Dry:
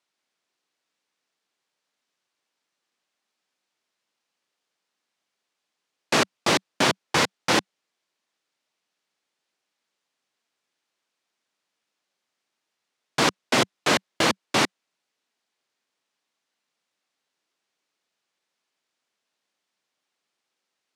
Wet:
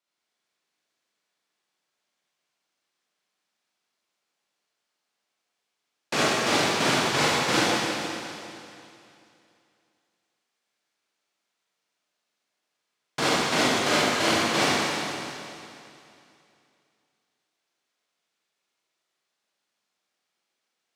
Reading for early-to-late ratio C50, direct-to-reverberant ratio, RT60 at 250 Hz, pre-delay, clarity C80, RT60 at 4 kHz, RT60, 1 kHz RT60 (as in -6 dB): -4.0 dB, -7.0 dB, 2.6 s, 39 ms, -2.0 dB, 2.6 s, 2.6 s, 2.6 s